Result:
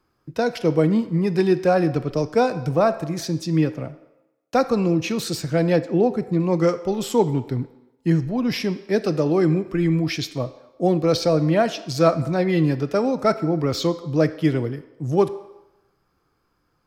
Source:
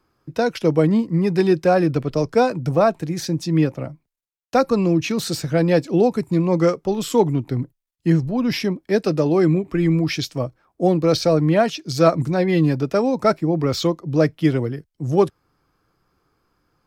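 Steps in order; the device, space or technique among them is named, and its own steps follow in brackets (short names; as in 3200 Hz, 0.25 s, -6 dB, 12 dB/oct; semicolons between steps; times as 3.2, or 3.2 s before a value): filtered reverb send (on a send: HPF 310 Hz 12 dB/oct + LPF 8000 Hz + reverb RT60 0.95 s, pre-delay 23 ms, DRR 12 dB); 5.76–6.4 on the sum: high shelf 3400 Hz -10.5 dB; gain -2 dB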